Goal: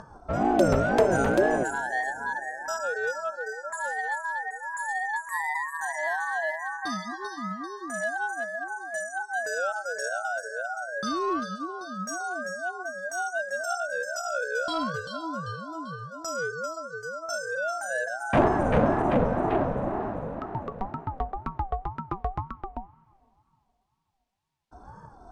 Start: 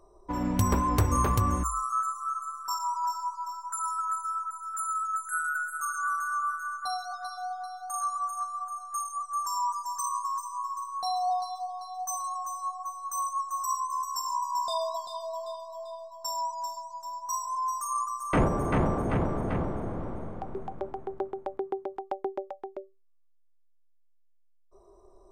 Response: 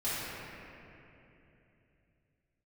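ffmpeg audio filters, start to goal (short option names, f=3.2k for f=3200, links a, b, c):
-filter_complex "[0:a]asplit=2[a][b];[b]volume=29.5dB,asoftclip=hard,volume=-29.5dB,volume=-7dB[c];[a][c]amix=inputs=2:normalize=0,lowshelf=f=330:g=11.5,acompressor=mode=upward:threshold=-29dB:ratio=2.5,highpass=110,lowpass=3.4k,aemphasis=mode=production:type=75fm,asplit=2[d][e];[1:a]atrim=start_sample=2205[f];[e][f]afir=irnorm=-1:irlink=0,volume=-28.5dB[g];[d][g]amix=inputs=2:normalize=0,aeval=exprs='val(0)*sin(2*PI*440*n/s+440*0.25/2*sin(2*PI*2*n/s))':c=same"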